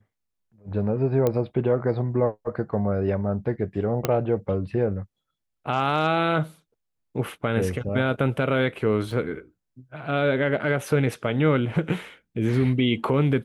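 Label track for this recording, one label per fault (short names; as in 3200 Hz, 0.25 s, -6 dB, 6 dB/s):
1.270000	1.270000	pop -11 dBFS
4.050000	4.050000	pop -8 dBFS
9.110000	9.110000	gap 2.7 ms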